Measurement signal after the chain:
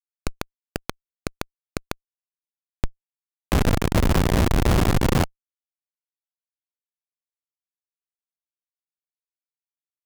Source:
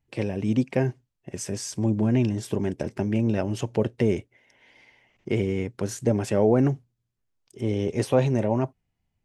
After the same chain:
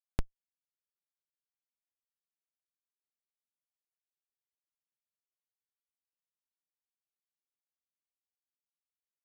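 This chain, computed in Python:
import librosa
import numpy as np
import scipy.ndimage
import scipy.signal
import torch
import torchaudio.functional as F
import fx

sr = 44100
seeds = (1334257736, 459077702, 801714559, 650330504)

y = fx.bin_compress(x, sr, power=0.2)
y = fx.cheby_harmonics(y, sr, harmonics=(2, 6), levels_db=(-17, -26), full_scale_db=16.0)
y = fx.schmitt(y, sr, flips_db=-3.5)
y = fx.record_warp(y, sr, rpm=45.0, depth_cents=250.0)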